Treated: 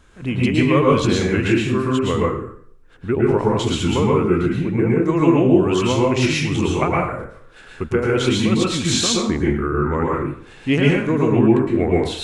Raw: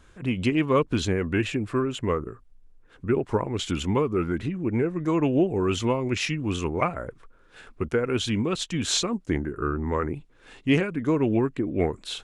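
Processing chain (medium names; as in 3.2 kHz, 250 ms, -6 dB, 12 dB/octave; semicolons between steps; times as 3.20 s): plate-style reverb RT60 0.56 s, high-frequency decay 0.85×, pre-delay 100 ms, DRR -3.5 dB; trim +2.5 dB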